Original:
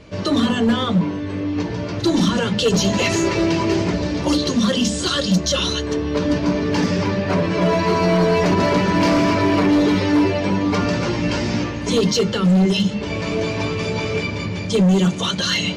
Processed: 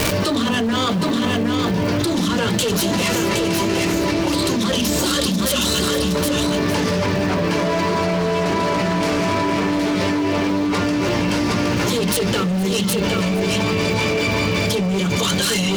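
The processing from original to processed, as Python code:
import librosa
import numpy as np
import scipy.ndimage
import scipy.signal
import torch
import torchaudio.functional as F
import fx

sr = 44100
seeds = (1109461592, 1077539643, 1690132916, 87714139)

p1 = fx.self_delay(x, sr, depth_ms=0.078)
p2 = fx.low_shelf(p1, sr, hz=490.0, db=-4.0)
p3 = p2 + 10.0 ** (-4.5 / 20.0) * np.pad(p2, (int(766 * sr / 1000.0), 0))[:len(p2)]
p4 = fx.dmg_crackle(p3, sr, seeds[0], per_s=570.0, level_db=-34.0)
p5 = p4 + fx.echo_single(p4, sr, ms=463, db=-13.5, dry=0)
p6 = fx.env_flatten(p5, sr, amount_pct=100)
y = p6 * librosa.db_to_amplitude(-5.0)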